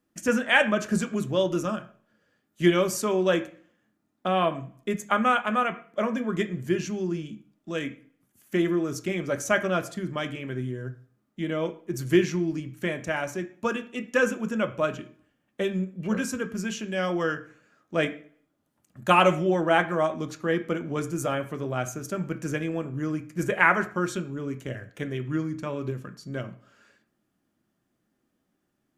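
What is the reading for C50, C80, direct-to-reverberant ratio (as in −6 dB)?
14.5 dB, 18.5 dB, 7.0 dB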